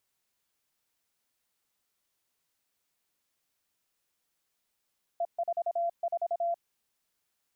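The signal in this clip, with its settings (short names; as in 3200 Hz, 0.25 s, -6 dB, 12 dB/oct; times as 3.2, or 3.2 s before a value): Morse "E44" 26 wpm 684 Hz -26.5 dBFS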